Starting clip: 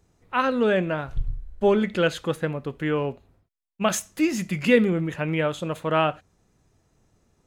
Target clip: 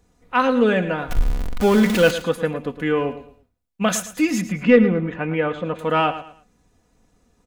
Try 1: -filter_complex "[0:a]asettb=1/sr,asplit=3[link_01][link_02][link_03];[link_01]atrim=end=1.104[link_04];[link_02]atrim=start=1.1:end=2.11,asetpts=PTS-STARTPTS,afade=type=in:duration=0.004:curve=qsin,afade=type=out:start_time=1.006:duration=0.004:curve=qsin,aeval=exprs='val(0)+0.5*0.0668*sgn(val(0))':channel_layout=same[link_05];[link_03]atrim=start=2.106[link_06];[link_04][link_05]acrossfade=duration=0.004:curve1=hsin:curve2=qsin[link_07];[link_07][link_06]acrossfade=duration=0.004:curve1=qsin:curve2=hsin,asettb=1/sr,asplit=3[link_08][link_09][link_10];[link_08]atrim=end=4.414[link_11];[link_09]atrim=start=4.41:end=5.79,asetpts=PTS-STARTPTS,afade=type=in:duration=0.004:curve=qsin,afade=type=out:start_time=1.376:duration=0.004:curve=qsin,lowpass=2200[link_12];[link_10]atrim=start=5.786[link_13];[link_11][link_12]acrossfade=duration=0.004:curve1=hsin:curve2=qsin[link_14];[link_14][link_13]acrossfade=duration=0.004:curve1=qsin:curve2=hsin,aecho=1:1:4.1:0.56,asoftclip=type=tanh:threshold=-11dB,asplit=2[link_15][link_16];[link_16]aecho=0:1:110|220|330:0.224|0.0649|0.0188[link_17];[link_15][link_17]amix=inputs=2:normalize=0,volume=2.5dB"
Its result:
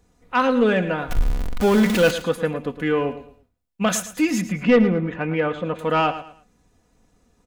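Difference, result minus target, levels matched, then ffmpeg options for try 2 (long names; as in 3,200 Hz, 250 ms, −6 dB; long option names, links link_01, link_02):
soft clipping: distortion +9 dB
-filter_complex "[0:a]asettb=1/sr,asplit=3[link_01][link_02][link_03];[link_01]atrim=end=1.104[link_04];[link_02]atrim=start=1.1:end=2.11,asetpts=PTS-STARTPTS,afade=type=in:duration=0.004:curve=qsin,afade=type=out:start_time=1.006:duration=0.004:curve=qsin,aeval=exprs='val(0)+0.5*0.0668*sgn(val(0))':channel_layout=same[link_05];[link_03]atrim=start=2.106[link_06];[link_04][link_05]acrossfade=duration=0.004:curve1=hsin:curve2=qsin[link_07];[link_07][link_06]acrossfade=duration=0.004:curve1=qsin:curve2=hsin,asettb=1/sr,asplit=3[link_08][link_09][link_10];[link_08]atrim=end=4.414[link_11];[link_09]atrim=start=4.41:end=5.79,asetpts=PTS-STARTPTS,afade=type=in:duration=0.004:curve=qsin,afade=type=out:start_time=1.376:duration=0.004:curve=qsin,lowpass=2200[link_12];[link_10]atrim=start=5.786[link_13];[link_11][link_12]acrossfade=duration=0.004:curve1=hsin:curve2=qsin[link_14];[link_14][link_13]acrossfade=duration=0.004:curve1=qsin:curve2=hsin,aecho=1:1:4.1:0.56,asoftclip=type=tanh:threshold=-4.5dB,asplit=2[link_15][link_16];[link_16]aecho=0:1:110|220|330:0.224|0.0649|0.0188[link_17];[link_15][link_17]amix=inputs=2:normalize=0,volume=2.5dB"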